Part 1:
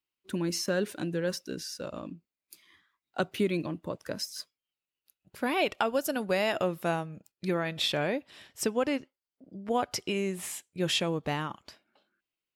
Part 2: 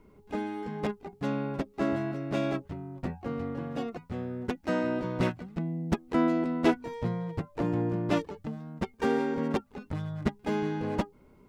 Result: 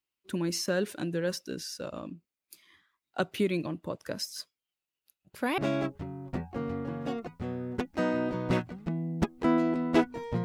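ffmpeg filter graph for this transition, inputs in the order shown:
ffmpeg -i cue0.wav -i cue1.wav -filter_complex "[0:a]apad=whole_dur=10.44,atrim=end=10.44,atrim=end=5.582[link_01];[1:a]atrim=start=2.278:end=7.14[link_02];[link_01][link_02]acrossfade=duration=0.004:curve1=hsin:curve2=hsin" out.wav

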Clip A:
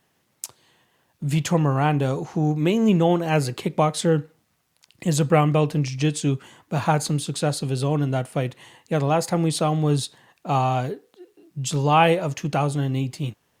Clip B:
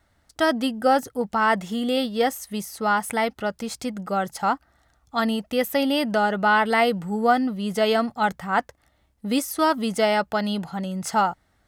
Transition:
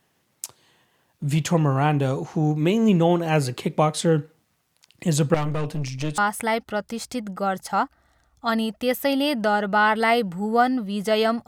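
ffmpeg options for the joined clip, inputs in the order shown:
ffmpeg -i cue0.wav -i cue1.wav -filter_complex "[0:a]asettb=1/sr,asplit=3[link_01][link_02][link_03];[link_01]atrim=end=5.344[link_04];[link_02]atrim=start=5.34:end=6.18,asetpts=PTS-STARTPTS,afade=type=in:duration=0.004:curve=qsin,afade=type=out:start_time=0.836:duration=0.004:curve=qsin,aeval=exprs='(tanh(12.6*val(0)+0.5)-tanh(0.5))/12.6':channel_layout=same[link_05];[link_03]atrim=start=6.176[link_06];[link_04][link_05]acrossfade=duration=0.004:curve1=hsin:curve2=qsin[link_07];[link_07][link_06]acrossfade=duration=0.004:curve1=qsin:curve2=hsin,apad=whole_dur=11.47,atrim=end=11.47,atrim=end=6.182[link_08];[1:a]atrim=start=2.878:end=8.17[link_09];[link_08][link_09]acrossfade=duration=0.004:curve1=hsin:curve2=hsin" out.wav

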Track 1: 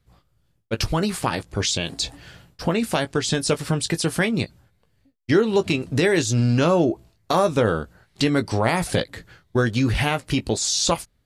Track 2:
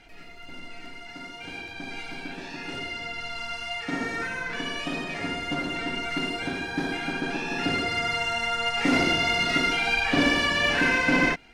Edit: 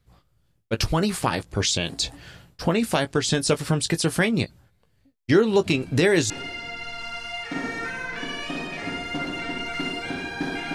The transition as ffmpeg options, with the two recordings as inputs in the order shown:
ffmpeg -i cue0.wav -i cue1.wav -filter_complex "[1:a]asplit=2[link_01][link_02];[0:a]apad=whole_dur=10.74,atrim=end=10.74,atrim=end=6.302[link_03];[link_02]atrim=start=2.668:end=7.11[link_04];[link_01]atrim=start=2.11:end=2.67,asetpts=PTS-STARTPTS,volume=-13.5dB,afade=type=in:duration=0.004:curve=hsin,afade=type=out:start_time=0.556:duration=0.004:curve=hsin,adelay=5740[link_05];[link_03][link_04]acrossfade=duration=0.004:curve1=hsin:curve2=hsin[link_06];[link_06][link_05]amix=inputs=2:normalize=0" out.wav

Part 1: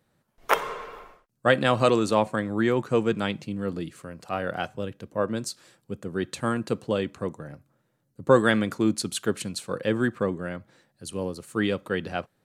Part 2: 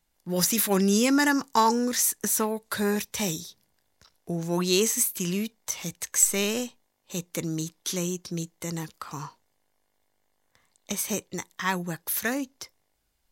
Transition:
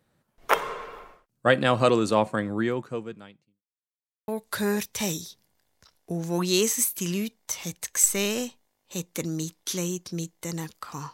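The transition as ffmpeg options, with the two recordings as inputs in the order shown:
ffmpeg -i cue0.wav -i cue1.wav -filter_complex "[0:a]apad=whole_dur=11.13,atrim=end=11.13,asplit=2[link_01][link_02];[link_01]atrim=end=3.63,asetpts=PTS-STARTPTS,afade=type=out:start_time=2.47:duration=1.16:curve=qua[link_03];[link_02]atrim=start=3.63:end=4.28,asetpts=PTS-STARTPTS,volume=0[link_04];[1:a]atrim=start=2.47:end=9.32,asetpts=PTS-STARTPTS,afade=type=in:duration=0.004:curve=hsin[link_05];[link_03][link_04][link_05]concat=n=3:v=0:a=1" out.wav

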